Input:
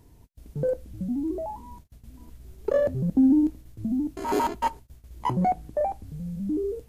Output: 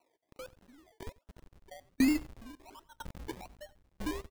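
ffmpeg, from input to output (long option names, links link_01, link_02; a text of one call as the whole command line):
ffmpeg -i in.wav -filter_complex "[0:a]lowpass=frequency=1100:width=0.5412,lowpass=frequency=1100:width=1.3066,lowshelf=frequency=440:gain=-7.5,aecho=1:1:3.3:0.95,asubboost=boost=4.5:cutoff=95,acrossover=split=430[link_01][link_02];[link_01]acrusher=bits=5:mix=0:aa=0.000001[link_03];[link_03][link_02]amix=inputs=2:normalize=0,atempo=1.6,acrusher=samples=26:mix=1:aa=0.000001:lfo=1:lforange=15.6:lforate=1.3,asplit=2[link_04][link_05];[link_05]aecho=0:1:91:0.106[link_06];[link_04][link_06]amix=inputs=2:normalize=0,aeval=exprs='val(0)*pow(10,-35*if(lt(mod(1*n/s,1),2*abs(1)/1000),1-mod(1*n/s,1)/(2*abs(1)/1000),(mod(1*n/s,1)-2*abs(1)/1000)/(1-2*abs(1)/1000))/20)':channel_layout=same,volume=-2.5dB" out.wav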